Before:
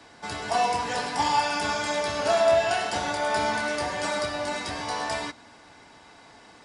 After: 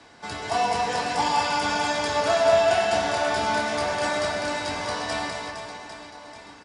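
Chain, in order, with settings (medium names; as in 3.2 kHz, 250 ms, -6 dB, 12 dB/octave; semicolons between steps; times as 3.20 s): low-pass 9.7 kHz 12 dB/octave; on a send: reverse bouncing-ball echo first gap 200 ms, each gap 1.3×, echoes 5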